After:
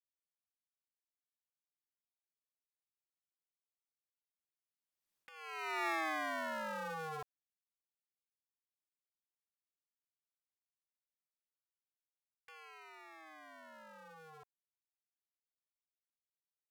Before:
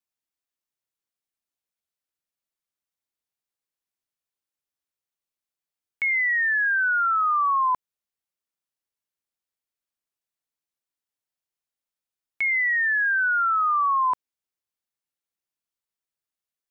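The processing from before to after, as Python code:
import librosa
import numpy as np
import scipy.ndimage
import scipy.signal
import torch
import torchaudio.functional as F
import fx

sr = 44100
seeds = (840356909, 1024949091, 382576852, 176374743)

y = fx.cycle_switch(x, sr, every=3, mode='inverted')
y = fx.doppler_pass(y, sr, speed_mps=44, closest_m=4.6, pass_at_s=5.16)
y = fx.over_compress(y, sr, threshold_db=-38.0, ratio=-0.5)
y = y * np.sin(2.0 * np.pi * 160.0 * np.arange(len(y)) / sr)
y = y * 10.0 ** (2.5 / 20.0)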